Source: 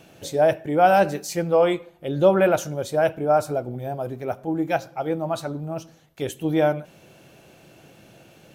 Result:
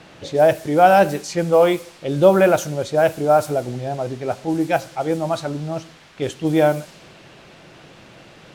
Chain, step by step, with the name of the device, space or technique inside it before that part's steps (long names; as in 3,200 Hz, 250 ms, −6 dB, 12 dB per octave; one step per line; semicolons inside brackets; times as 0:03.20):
cassette deck with a dynamic noise filter (white noise bed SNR 22 dB; low-pass that shuts in the quiet parts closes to 2,800 Hz, open at −17.5 dBFS)
level +4 dB